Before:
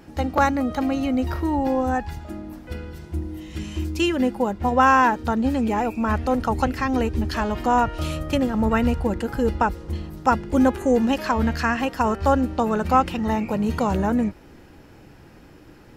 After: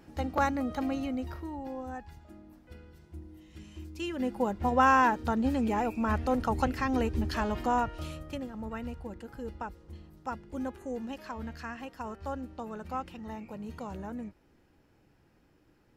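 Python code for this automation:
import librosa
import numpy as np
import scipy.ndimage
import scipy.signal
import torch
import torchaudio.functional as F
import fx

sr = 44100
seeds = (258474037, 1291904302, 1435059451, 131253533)

y = fx.gain(x, sr, db=fx.line((0.94, -8.5), (1.56, -17.0), (3.92, -17.0), (4.43, -6.5), (7.56, -6.5), (8.54, -18.0)))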